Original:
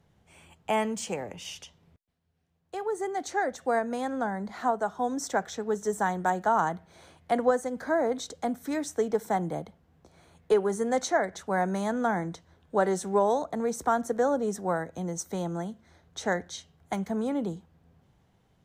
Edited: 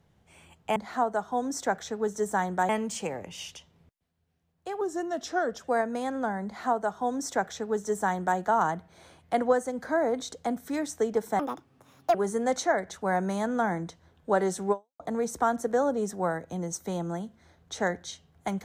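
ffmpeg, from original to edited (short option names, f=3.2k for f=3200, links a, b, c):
-filter_complex "[0:a]asplit=8[a][b][c][d][e][f][g][h];[a]atrim=end=0.762[i];[b]atrim=start=4.428:end=6.362[j];[c]atrim=start=0.758:end=2.884[k];[d]atrim=start=2.88:end=3.62,asetpts=PTS-STARTPTS,asetrate=39249,aresample=44100,atrim=end_sample=36667,asetpts=PTS-STARTPTS[l];[e]atrim=start=3.616:end=9.374[m];[f]atrim=start=9.37:end=10.6,asetpts=PTS-STARTPTS,asetrate=71883,aresample=44100[n];[g]atrim=start=10.596:end=13.45,asetpts=PTS-STARTPTS,afade=t=out:st=2.574:d=0.28:c=exp[o];[h]atrim=start=13.45,asetpts=PTS-STARTPTS,afade=t=in:d=0.004:c=hsin[p];[i][j]acrossfade=d=0.004:c1=hsin:c2=hsin[q];[q][k]acrossfade=d=0.004:c1=hsin:c2=hsin[r];[r][l]acrossfade=d=0.004:c1=hsin:c2=hsin[s];[s][m]acrossfade=d=0.004:c1=hsin:c2=hsin[t];[t][n]acrossfade=d=0.004:c1=hsin:c2=hsin[u];[o][p]concat=n=2:v=0:a=1[v];[u][v]acrossfade=d=0.004:c1=hsin:c2=hsin"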